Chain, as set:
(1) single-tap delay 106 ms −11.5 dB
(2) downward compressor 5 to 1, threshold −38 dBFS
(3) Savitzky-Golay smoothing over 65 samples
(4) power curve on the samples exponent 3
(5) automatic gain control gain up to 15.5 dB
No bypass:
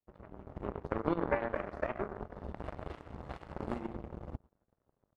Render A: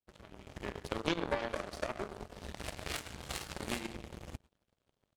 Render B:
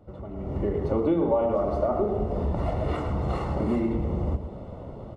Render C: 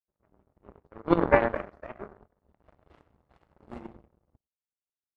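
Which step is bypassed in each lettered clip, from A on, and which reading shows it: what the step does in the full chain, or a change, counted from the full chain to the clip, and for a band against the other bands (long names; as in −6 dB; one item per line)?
3, 4 kHz band +20.5 dB
4, change in crest factor −13.0 dB
2, average gain reduction 7.0 dB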